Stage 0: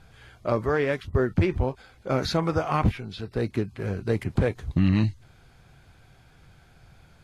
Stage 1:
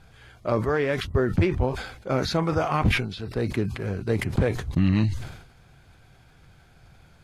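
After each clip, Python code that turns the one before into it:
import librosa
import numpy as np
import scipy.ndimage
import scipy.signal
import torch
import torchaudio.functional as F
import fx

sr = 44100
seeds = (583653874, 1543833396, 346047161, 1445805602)

y = fx.sustainer(x, sr, db_per_s=72.0)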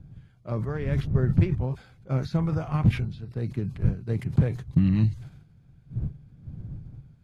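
y = fx.dmg_wind(x, sr, seeds[0], corner_hz=94.0, level_db=-30.0)
y = fx.peak_eq(y, sr, hz=140.0, db=15.0, octaves=1.2)
y = fx.upward_expand(y, sr, threshold_db=-29.0, expansion=1.5)
y = y * 10.0 ** (-7.0 / 20.0)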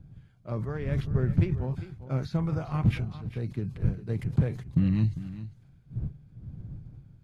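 y = x + 10.0 ** (-14.0 / 20.0) * np.pad(x, (int(399 * sr / 1000.0), 0))[:len(x)]
y = y * 10.0 ** (-3.0 / 20.0)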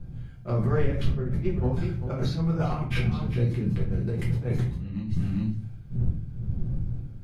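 y = fx.over_compress(x, sr, threshold_db=-33.0, ratio=-1.0)
y = fx.room_shoebox(y, sr, seeds[1], volume_m3=34.0, walls='mixed', distance_m=0.88)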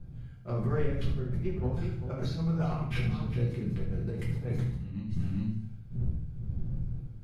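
y = fx.echo_feedback(x, sr, ms=73, feedback_pct=44, wet_db=-9.0)
y = y * 10.0 ** (-6.0 / 20.0)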